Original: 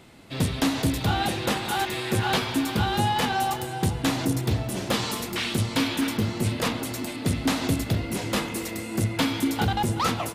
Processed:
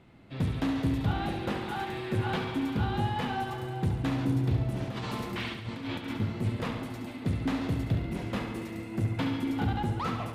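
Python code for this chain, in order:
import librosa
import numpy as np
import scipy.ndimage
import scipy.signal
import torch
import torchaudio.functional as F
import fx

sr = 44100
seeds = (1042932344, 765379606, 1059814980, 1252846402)

p1 = fx.bass_treble(x, sr, bass_db=5, treble_db=-14)
p2 = fx.over_compress(p1, sr, threshold_db=-28.0, ratio=-1.0, at=(4.8, 6.2))
p3 = p2 + fx.echo_feedback(p2, sr, ms=70, feedback_pct=59, wet_db=-7.5, dry=0)
y = p3 * 10.0 ** (-8.5 / 20.0)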